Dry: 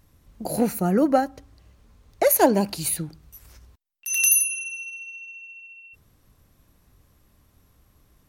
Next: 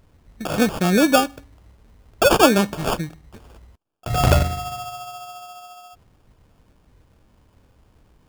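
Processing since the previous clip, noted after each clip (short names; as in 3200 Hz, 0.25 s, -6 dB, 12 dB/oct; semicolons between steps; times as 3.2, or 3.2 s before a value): sample-rate reducer 2000 Hz, jitter 0%; gain +3.5 dB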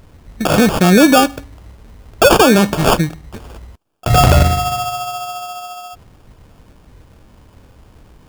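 maximiser +12.5 dB; gain -1 dB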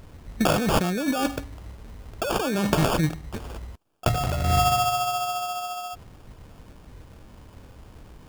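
negative-ratio compressor -16 dBFS, ratio -1; gain -6.5 dB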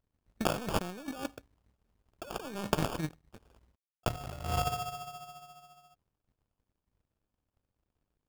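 power-law curve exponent 2; gain -3 dB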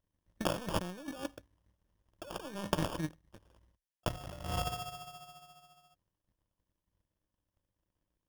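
ripple EQ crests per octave 1.2, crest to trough 6 dB; gain -3 dB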